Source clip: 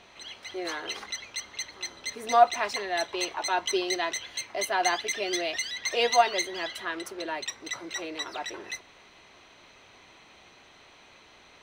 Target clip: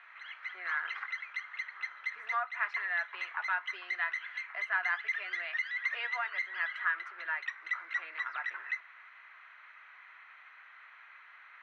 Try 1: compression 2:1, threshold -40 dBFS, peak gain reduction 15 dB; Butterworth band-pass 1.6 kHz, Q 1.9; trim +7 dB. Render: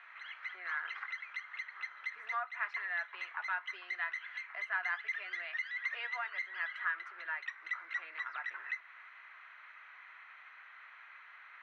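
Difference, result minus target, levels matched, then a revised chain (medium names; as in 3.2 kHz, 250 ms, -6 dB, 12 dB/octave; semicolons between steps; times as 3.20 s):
compression: peak gain reduction +4 dB
compression 2:1, threshold -32 dBFS, peak gain reduction 11 dB; Butterworth band-pass 1.6 kHz, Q 1.9; trim +7 dB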